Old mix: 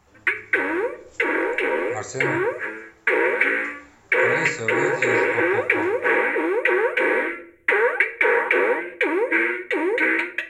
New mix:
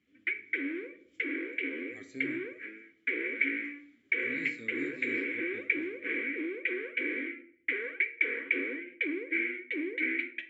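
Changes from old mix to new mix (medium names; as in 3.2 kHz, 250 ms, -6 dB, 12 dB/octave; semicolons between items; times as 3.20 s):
background: remove band-stop 4.9 kHz, Q 7.2; master: add vowel filter i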